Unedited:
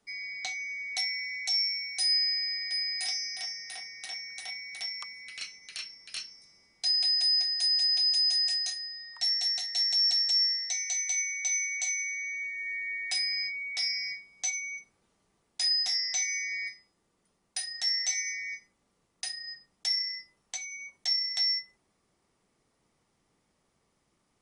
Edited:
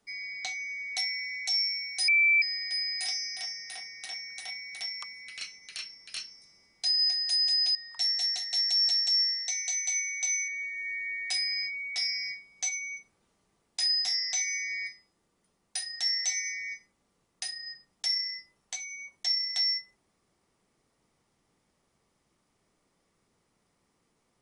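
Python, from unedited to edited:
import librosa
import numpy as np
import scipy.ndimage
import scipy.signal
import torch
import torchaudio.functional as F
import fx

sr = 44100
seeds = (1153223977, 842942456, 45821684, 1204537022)

y = fx.edit(x, sr, fx.bleep(start_s=2.08, length_s=0.34, hz=2330.0, db=-19.0),
    fx.cut(start_s=6.99, length_s=0.31),
    fx.cut(start_s=8.06, length_s=0.91),
    fx.cut(start_s=11.7, length_s=0.59), tone=tone)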